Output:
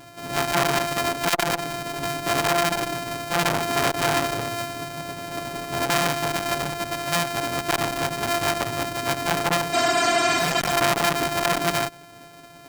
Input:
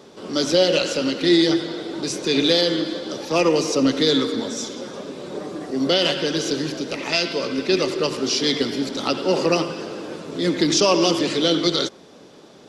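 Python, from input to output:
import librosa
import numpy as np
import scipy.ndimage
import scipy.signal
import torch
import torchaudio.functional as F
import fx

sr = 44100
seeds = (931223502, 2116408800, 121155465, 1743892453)

y = np.r_[np.sort(x[:len(x) // 128 * 128].reshape(-1, 128), axis=1).ravel(), x[len(x) // 128 * 128:]]
y = y + 0.87 * np.pad(y, (int(7.1 * sr / 1000.0), 0))[:len(y)]
y = fx.spec_repair(y, sr, seeds[0], start_s=9.76, length_s=0.93, low_hz=230.0, high_hz=8900.0, source='after')
y = fx.transformer_sat(y, sr, knee_hz=1600.0)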